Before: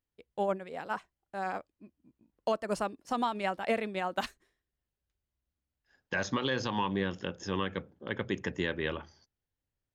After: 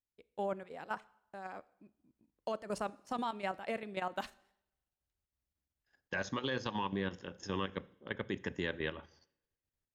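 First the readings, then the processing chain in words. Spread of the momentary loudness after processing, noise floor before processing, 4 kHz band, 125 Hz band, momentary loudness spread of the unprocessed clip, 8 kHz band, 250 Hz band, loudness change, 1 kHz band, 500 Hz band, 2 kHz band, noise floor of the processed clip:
11 LU, under -85 dBFS, -5.5 dB, -5.5 dB, 8 LU, -6.5 dB, -5.5 dB, -5.5 dB, -6.0 dB, -6.0 dB, -5.0 dB, under -85 dBFS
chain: level held to a coarse grid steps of 11 dB; two-slope reverb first 0.72 s, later 1.9 s, from -28 dB, DRR 18.5 dB; trim -2 dB

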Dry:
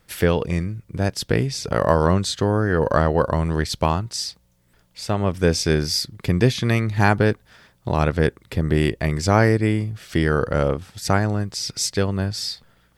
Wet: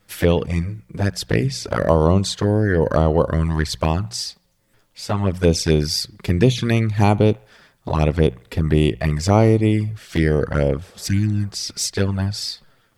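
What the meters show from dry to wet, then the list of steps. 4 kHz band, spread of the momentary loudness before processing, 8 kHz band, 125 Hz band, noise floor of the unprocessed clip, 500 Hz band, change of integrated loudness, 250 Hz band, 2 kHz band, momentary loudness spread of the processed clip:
+0.5 dB, 8 LU, +0.5 dB, +2.5 dB, -61 dBFS, +1.5 dB, +1.5 dB, +2.5 dB, -3.0 dB, 9 LU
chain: touch-sensitive flanger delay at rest 10.2 ms, full sweep at -14 dBFS; hum notches 60/120/180 Hz; feedback echo behind a band-pass 73 ms, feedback 48%, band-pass 1.3 kHz, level -22 dB; spectral replace 10.85–11.42 s, 360–1500 Hz; trim +3.5 dB

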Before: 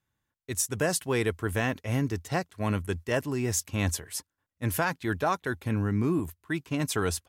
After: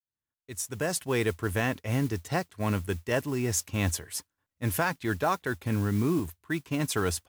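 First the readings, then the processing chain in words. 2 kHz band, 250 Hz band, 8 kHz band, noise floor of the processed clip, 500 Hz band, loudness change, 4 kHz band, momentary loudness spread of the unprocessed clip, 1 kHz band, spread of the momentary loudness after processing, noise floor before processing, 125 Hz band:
0.0 dB, 0.0 dB, -1.5 dB, under -85 dBFS, -0.5 dB, 0.0 dB, -0.5 dB, 6 LU, 0.0 dB, 6 LU, -85 dBFS, 0.0 dB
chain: fade-in on the opening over 1.20 s; modulation noise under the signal 22 dB

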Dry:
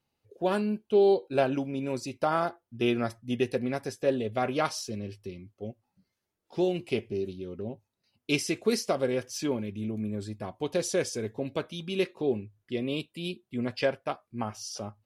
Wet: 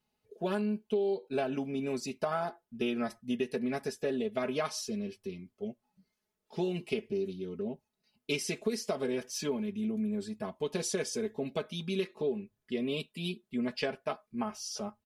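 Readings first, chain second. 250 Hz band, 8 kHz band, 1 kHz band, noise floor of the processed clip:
-3.0 dB, -2.0 dB, -6.5 dB, -85 dBFS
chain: comb 4.7 ms, depth 85%; compression 6:1, threshold -25 dBFS, peak gain reduction 11.5 dB; trim -3 dB

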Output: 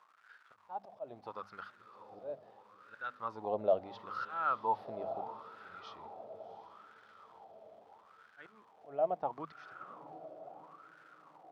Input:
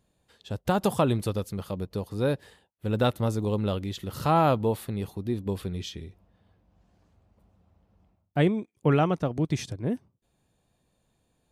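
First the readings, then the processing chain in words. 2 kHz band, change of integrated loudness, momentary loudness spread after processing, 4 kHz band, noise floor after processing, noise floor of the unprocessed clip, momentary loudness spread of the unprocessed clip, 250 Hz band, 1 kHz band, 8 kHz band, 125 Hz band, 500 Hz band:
-9.5 dB, -11.5 dB, 24 LU, -20.5 dB, -65 dBFS, -73 dBFS, 11 LU, -24.5 dB, -7.5 dB, under -30 dB, -32.0 dB, -10.0 dB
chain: resonant high shelf 6.3 kHz -7 dB, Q 3; hum notches 50/100/150/200/250 Hz; slow attack 568 ms; echo that smears into a reverb 700 ms, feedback 61%, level -11.5 dB; crackle 510 per s -44 dBFS; wah-wah 0.75 Hz 640–1500 Hz, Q 9; trim +11 dB

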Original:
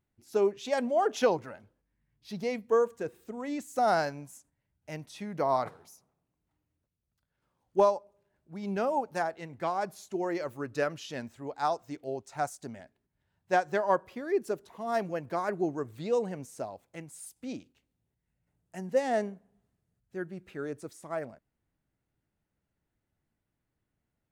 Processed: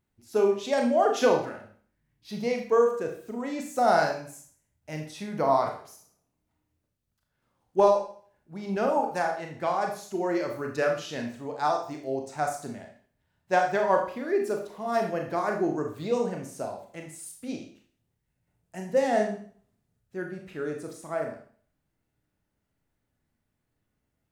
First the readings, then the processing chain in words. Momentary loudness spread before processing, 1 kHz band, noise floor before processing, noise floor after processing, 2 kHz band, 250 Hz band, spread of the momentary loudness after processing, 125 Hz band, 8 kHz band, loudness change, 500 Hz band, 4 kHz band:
17 LU, +4.0 dB, -84 dBFS, -79 dBFS, +4.5 dB, +4.5 dB, 17 LU, +3.0 dB, +4.0 dB, +4.0 dB, +4.0 dB, +4.0 dB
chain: Schroeder reverb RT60 0.48 s, combs from 26 ms, DRR 2 dB; trim +2 dB

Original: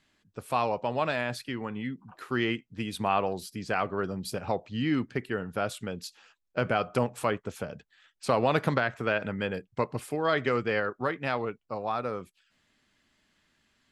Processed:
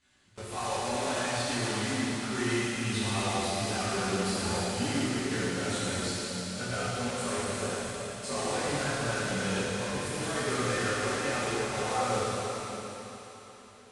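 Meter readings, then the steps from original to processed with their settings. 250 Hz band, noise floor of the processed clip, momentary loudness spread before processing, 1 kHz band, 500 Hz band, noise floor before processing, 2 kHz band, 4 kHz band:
0.0 dB, -51 dBFS, 10 LU, -2.0 dB, -2.5 dB, -73 dBFS, 0.0 dB, +6.5 dB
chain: block-companded coder 3-bit; treble shelf 7.2 kHz +7 dB; peak limiter -24 dBFS, peak gain reduction 16 dB; comb of notches 160 Hz; chorus 0.76 Hz, delay 15.5 ms, depth 6.7 ms; feedback echo behind a high-pass 114 ms, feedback 81%, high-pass 2.2 kHz, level -7 dB; plate-style reverb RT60 3.8 s, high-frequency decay 0.75×, DRR -9.5 dB; resampled via 22.05 kHz

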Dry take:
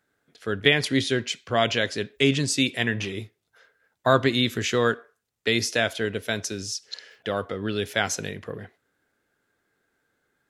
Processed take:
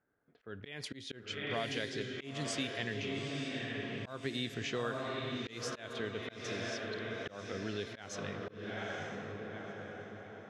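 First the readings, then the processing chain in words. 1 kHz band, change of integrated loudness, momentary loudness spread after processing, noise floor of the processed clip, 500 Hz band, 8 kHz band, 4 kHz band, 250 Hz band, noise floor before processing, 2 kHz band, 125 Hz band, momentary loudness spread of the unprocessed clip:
-14.0 dB, -15.0 dB, 8 LU, -57 dBFS, -13.5 dB, -16.0 dB, -14.0 dB, -13.0 dB, -76 dBFS, -13.5 dB, -12.5 dB, 13 LU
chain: echo that smears into a reverb 905 ms, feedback 48%, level -5 dB; level-controlled noise filter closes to 1.4 kHz, open at -16.5 dBFS; compression 2.5:1, threshold -32 dBFS, peak gain reduction 13 dB; slow attack 205 ms; trim -5.5 dB

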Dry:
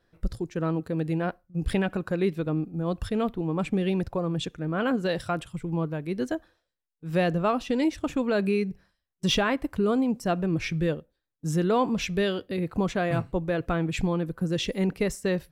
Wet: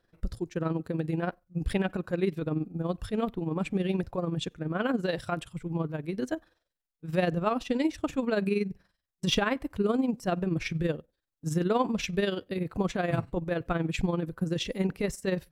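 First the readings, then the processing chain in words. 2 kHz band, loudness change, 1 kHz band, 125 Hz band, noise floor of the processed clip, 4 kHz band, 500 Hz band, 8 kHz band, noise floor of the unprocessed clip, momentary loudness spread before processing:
-2.5 dB, -3.0 dB, -3.0 dB, -2.5 dB, -84 dBFS, -2.5 dB, -3.0 dB, -2.5 dB, -81 dBFS, 7 LU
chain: AM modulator 21 Hz, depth 45%

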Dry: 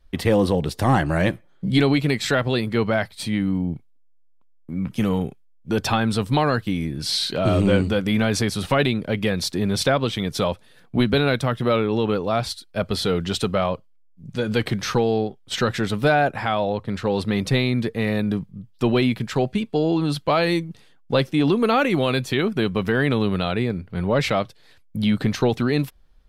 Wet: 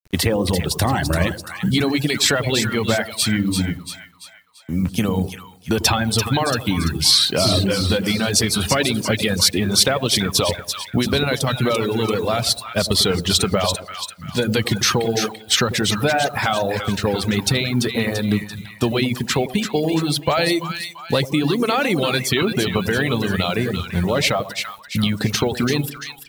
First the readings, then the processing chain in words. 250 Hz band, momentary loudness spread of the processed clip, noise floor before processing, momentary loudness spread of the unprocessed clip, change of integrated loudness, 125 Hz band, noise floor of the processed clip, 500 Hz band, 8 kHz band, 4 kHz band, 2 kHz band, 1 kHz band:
+0.5 dB, 7 LU, -53 dBFS, 7 LU, +2.5 dB, +1.5 dB, -42 dBFS, +0.5 dB, +13.0 dB, +9.0 dB, +3.5 dB, +1.0 dB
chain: in parallel at +2 dB: peak limiter -12.5 dBFS, peak gain reduction 7.5 dB; on the sum: compression 10:1, threshold -14 dBFS, peak gain reduction 7 dB; high-pass 50 Hz 12 dB/octave; peaking EQ 79 Hz +8 dB 0.4 oct; bit crusher 8-bit; treble shelf 3.3 kHz +9.5 dB; on a send: two-band feedback delay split 940 Hz, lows 96 ms, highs 339 ms, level -6 dB; on the sum: reverb removal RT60 0.9 s; tape noise reduction on one side only decoder only; trim -1 dB

